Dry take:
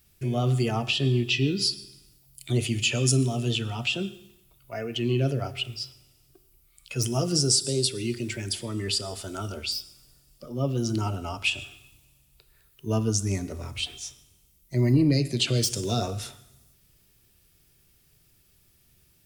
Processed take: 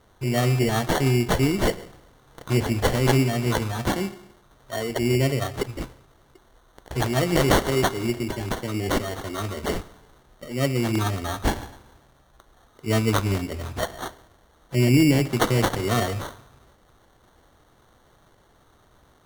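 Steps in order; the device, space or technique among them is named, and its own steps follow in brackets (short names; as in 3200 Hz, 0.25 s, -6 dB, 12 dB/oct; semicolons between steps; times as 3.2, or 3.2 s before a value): crushed at another speed (playback speed 0.8×; sample-and-hold 22×; playback speed 1.25×); bell 150 Hz -3.5 dB 1.2 oct; gain +5 dB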